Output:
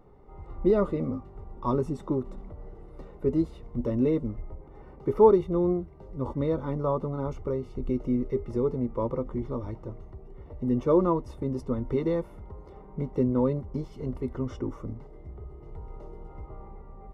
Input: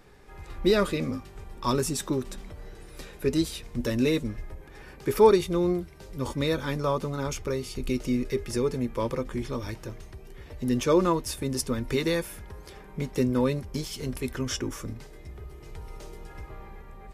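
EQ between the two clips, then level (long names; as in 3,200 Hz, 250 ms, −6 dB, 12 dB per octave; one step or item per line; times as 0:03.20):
Savitzky-Golay smoothing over 65 samples
0.0 dB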